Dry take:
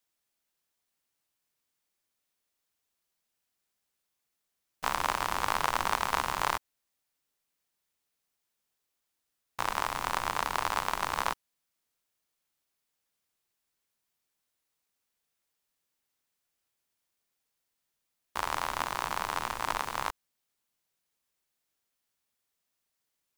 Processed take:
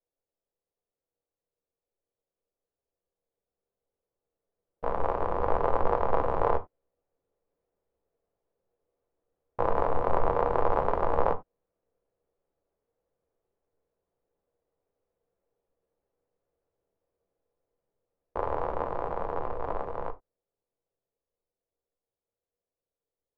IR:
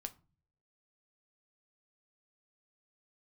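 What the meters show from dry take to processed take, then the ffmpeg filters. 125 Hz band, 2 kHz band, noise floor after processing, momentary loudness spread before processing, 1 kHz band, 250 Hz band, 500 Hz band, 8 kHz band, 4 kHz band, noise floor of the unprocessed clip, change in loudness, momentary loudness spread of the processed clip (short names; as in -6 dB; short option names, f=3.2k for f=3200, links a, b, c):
+8.5 dB, -8.5 dB, under -85 dBFS, 7 LU, +1.0 dB, +7.0 dB, +13.0 dB, under -30 dB, under -20 dB, -83 dBFS, +2.0 dB, 9 LU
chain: -filter_complex "[0:a]lowpass=f=480:t=q:w=3.7,equalizer=f=240:w=0.42:g=-12,dynaudnorm=f=320:g=31:m=11.5dB[a];[1:a]atrim=start_sample=2205,atrim=end_sample=4410[b];[a][b]afir=irnorm=-1:irlink=0,volume=8dB"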